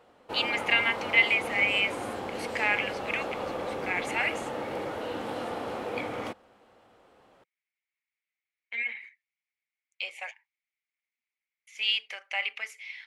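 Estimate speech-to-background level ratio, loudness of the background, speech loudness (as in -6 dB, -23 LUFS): 7.0 dB, -35.0 LUFS, -28.0 LUFS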